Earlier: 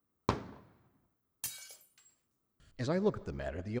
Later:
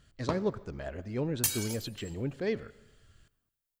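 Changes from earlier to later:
speech: entry −2.60 s
first sound −3.0 dB
second sound +11.0 dB

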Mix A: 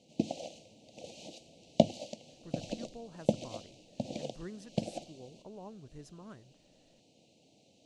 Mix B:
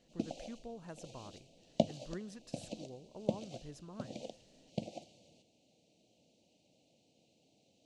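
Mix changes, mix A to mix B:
speech: entry −2.30 s
background −6.0 dB

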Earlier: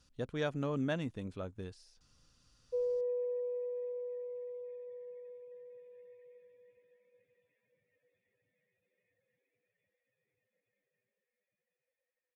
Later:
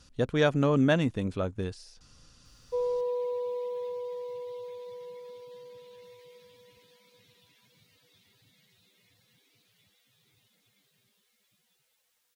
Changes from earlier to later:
speech +11.0 dB
background: remove formant resonators in series e

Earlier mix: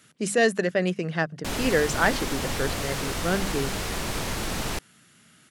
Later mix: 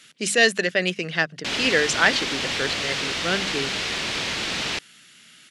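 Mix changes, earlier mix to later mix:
background: add high-frequency loss of the air 73 metres
master: add meter weighting curve D

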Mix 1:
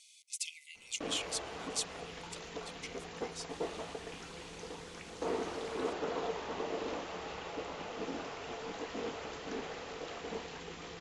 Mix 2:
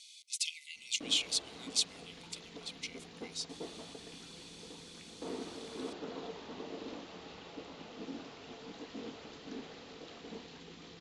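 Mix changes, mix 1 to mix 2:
background −10.5 dB
master: add graphic EQ with 10 bands 125 Hz +5 dB, 250 Hz +10 dB, 4,000 Hz +9 dB

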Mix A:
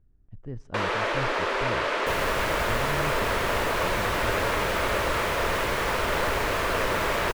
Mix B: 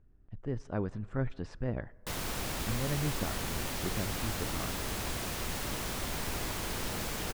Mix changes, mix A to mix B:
speech +5.0 dB
first sound: muted
master: add low-shelf EQ 220 Hz −6.5 dB

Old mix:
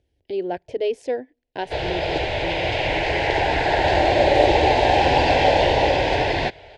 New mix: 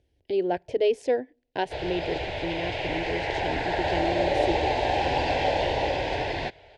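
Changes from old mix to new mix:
speech: send +7.0 dB
background −8.0 dB

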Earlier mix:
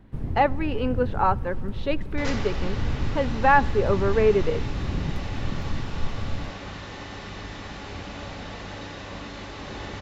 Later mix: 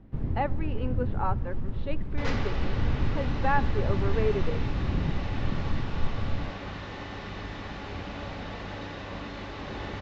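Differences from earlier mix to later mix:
speech −8.5 dB
master: add high-frequency loss of the air 130 metres

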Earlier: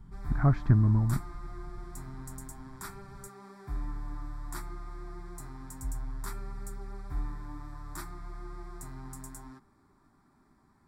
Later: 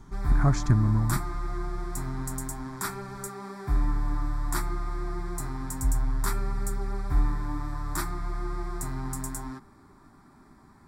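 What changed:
speech: remove high-frequency loss of the air 460 metres
background +10.5 dB

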